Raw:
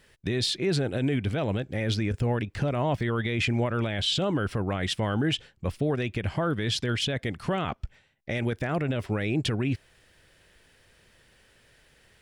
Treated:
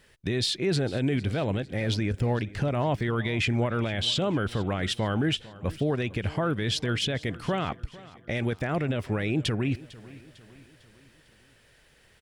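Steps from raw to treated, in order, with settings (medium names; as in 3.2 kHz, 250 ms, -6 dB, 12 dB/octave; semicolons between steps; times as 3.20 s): feedback delay 451 ms, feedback 49%, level -19.5 dB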